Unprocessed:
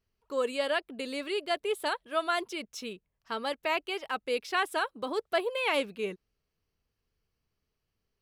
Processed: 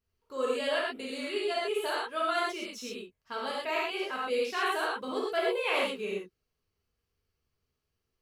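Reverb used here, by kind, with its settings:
reverb whose tail is shaped and stops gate 150 ms flat, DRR −5.5 dB
level −6.5 dB

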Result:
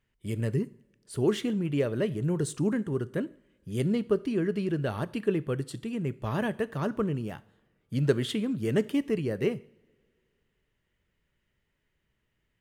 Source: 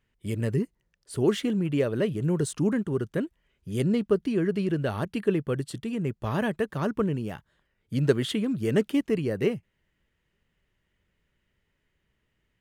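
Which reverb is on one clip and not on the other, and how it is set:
coupled-rooms reverb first 0.53 s, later 2.4 s, from −22 dB, DRR 16 dB
level −2.5 dB

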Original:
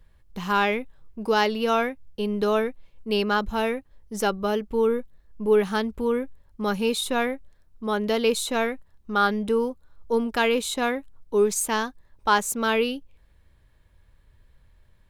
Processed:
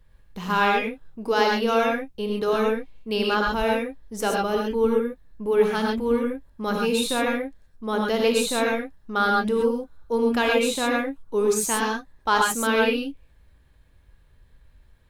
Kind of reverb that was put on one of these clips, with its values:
reverb whose tail is shaped and stops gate 150 ms rising, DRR −0.5 dB
level −1.5 dB

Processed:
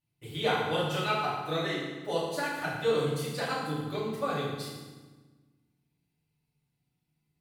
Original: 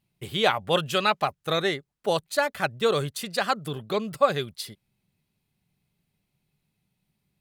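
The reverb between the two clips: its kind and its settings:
feedback delay network reverb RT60 1.3 s, low-frequency decay 1.45×, high-frequency decay 0.8×, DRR −9 dB
level −15 dB

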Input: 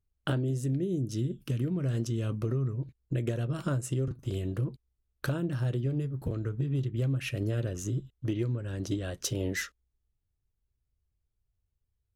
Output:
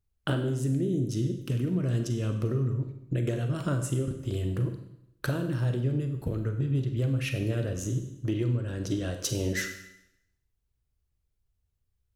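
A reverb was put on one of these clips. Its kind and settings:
four-comb reverb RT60 0.81 s, combs from 33 ms, DRR 6 dB
level +1.5 dB

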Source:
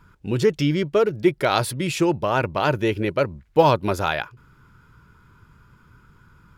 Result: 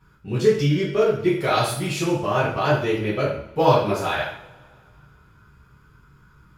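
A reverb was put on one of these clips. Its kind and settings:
coupled-rooms reverb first 0.56 s, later 2.2 s, from −24 dB, DRR −8.5 dB
level −9.5 dB

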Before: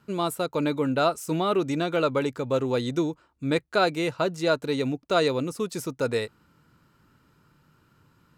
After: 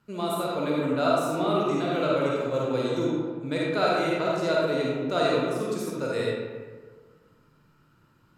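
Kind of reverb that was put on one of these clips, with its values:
comb and all-pass reverb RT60 1.6 s, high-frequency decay 0.5×, pre-delay 10 ms, DRR −5 dB
level −6.5 dB

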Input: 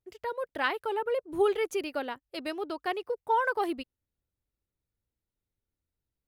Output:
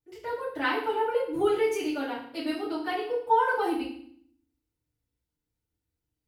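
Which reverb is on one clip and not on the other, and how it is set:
feedback delay network reverb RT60 0.58 s, low-frequency decay 1.55×, high-frequency decay 1×, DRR −10 dB
level −8.5 dB

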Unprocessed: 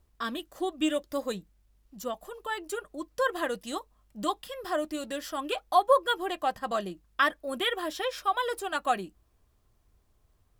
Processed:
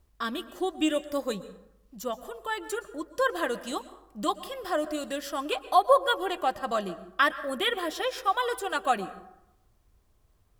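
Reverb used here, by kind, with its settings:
dense smooth reverb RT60 0.85 s, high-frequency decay 0.5×, pre-delay 105 ms, DRR 14.5 dB
level +1.5 dB

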